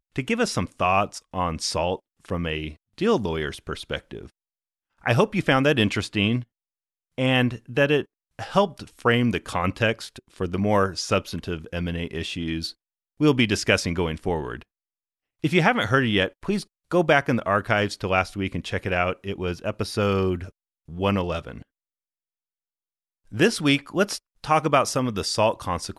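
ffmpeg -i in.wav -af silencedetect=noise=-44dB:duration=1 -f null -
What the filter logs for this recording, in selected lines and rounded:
silence_start: 21.62
silence_end: 23.32 | silence_duration: 1.69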